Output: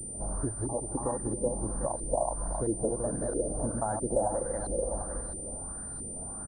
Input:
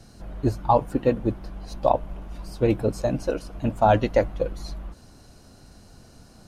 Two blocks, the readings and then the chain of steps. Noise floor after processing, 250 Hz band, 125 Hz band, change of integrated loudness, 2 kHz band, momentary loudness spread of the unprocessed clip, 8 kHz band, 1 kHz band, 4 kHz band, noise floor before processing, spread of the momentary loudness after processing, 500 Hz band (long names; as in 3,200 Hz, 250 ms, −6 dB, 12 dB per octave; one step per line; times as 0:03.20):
−40 dBFS, −7.0 dB, −8.0 dB, −8.0 dB, −14.5 dB, 19 LU, +16.5 dB, −10.5 dB, below −25 dB, −51 dBFS, 7 LU, −7.0 dB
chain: feedback delay that plays each chunk backwards 186 ms, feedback 48%, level −3 dB
in parallel at −2.5 dB: brickwall limiter −15 dBFS, peak gain reduction 11.5 dB
on the sum: downward compressor 12 to 1, threshold −27 dBFS, peak gain reduction 18.5 dB
on a send: repeating echo 282 ms, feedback 44%, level −14 dB
on the sum: auto-filter low-pass saw up 1.5 Hz 350–3,200 Hz
Butterworth band-reject 2,700 Hz, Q 0.82
switching amplifier with a slow clock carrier 9,100 Hz
level −2.5 dB